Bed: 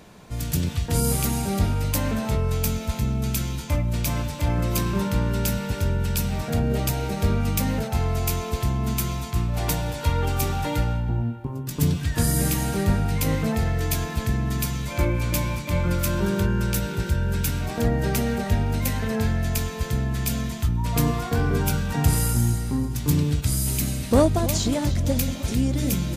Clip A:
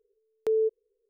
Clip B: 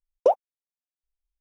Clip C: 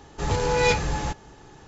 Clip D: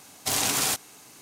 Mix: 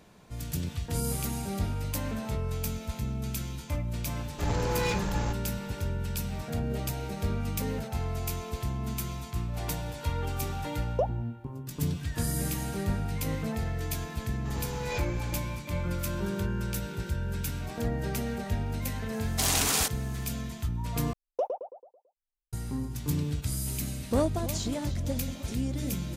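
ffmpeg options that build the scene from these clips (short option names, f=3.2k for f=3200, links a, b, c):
-filter_complex "[3:a]asplit=2[a][b];[2:a]asplit=2[c][d];[0:a]volume=-8.5dB[e];[a]asoftclip=type=tanh:threshold=-21.5dB[f];[d]asplit=2[g][h];[h]adelay=110,lowpass=f=1.8k:p=1,volume=-5dB,asplit=2[i][j];[j]adelay=110,lowpass=f=1.8k:p=1,volume=0.47,asplit=2[k][l];[l]adelay=110,lowpass=f=1.8k:p=1,volume=0.47,asplit=2[m][n];[n]adelay=110,lowpass=f=1.8k:p=1,volume=0.47,asplit=2[o][p];[p]adelay=110,lowpass=f=1.8k:p=1,volume=0.47,asplit=2[q][r];[r]adelay=110,lowpass=f=1.8k:p=1,volume=0.47[s];[g][i][k][m][o][q][s]amix=inputs=7:normalize=0[t];[e]asplit=2[u][v];[u]atrim=end=21.134[w];[t]atrim=end=1.4,asetpts=PTS-STARTPTS,volume=-10.5dB[x];[v]atrim=start=22.526[y];[f]atrim=end=1.67,asetpts=PTS-STARTPTS,volume=-4.5dB,afade=t=in:d=0.004:c=hsin,afade=t=out:st=1.666:d=0.004:c=hsin,adelay=4200[z];[1:a]atrim=end=1.09,asetpts=PTS-STARTPTS,volume=-15dB,afade=t=in:d=0.004:c=hsin,afade=t=out:st=1.086:d=0.004:c=hsin,adelay=7150[aa];[c]atrim=end=1.4,asetpts=PTS-STARTPTS,volume=-9dB,afade=t=in:d=0.004:c=hsin,afade=t=out:st=1.396:d=0.004:c=hsin,adelay=10730[ab];[b]atrim=end=1.67,asetpts=PTS-STARTPTS,volume=-14.5dB,afade=t=in:d=0.004:c=hsin,afade=t=out:st=1.666:d=0.004:c=hsin,adelay=14260[ac];[4:a]atrim=end=1.21,asetpts=PTS-STARTPTS,volume=-1.5dB,afade=t=in:d=0.004:c=hsin,afade=t=out:st=1.206:d=0.004:c=hsin,adelay=19120[ad];[w][x]acrossfade=d=0.004:c1=hsin:c2=hsin[ae];[ae][y]acrossfade=d=0.004:c1=hsin:c2=hsin[af];[af][z][aa][ab][ac][ad]amix=inputs=6:normalize=0"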